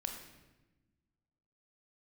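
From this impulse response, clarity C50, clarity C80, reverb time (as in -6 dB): 5.5 dB, 7.5 dB, 1.1 s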